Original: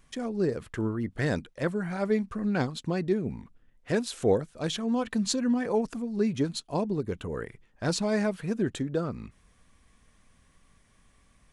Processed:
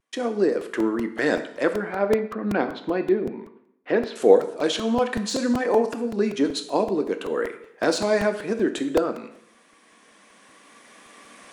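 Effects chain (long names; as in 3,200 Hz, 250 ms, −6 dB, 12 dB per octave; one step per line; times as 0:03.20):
camcorder AGC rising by 5.6 dB per second
high-pass filter 270 Hz 24 dB per octave
noise gate with hold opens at −56 dBFS
0:01.73–0:04.16: high-frequency loss of the air 300 metres
dense smooth reverb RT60 0.73 s, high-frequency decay 0.95×, DRR 7 dB
pitch vibrato 0.57 Hz 22 cents
high-shelf EQ 5,000 Hz −5.5 dB
de-essing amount 70%
regular buffer underruns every 0.19 s, samples 128, repeat, from 0:00.61
level +7.5 dB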